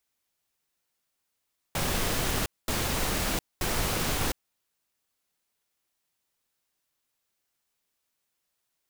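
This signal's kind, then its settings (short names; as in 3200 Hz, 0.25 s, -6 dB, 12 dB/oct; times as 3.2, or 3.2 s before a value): noise bursts pink, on 0.71 s, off 0.22 s, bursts 3, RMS -28 dBFS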